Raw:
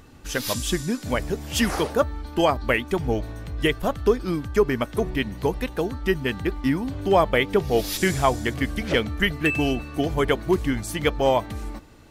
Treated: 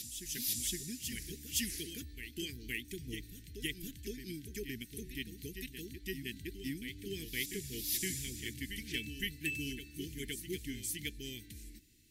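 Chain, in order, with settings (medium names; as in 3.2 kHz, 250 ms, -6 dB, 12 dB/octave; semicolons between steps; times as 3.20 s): inverse Chebyshev band-stop 550–1300 Hz, stop band 40 dB; pre-emphasis filter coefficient 0.8; reverse echo 515 ms -8 dB; trim -4.5 dB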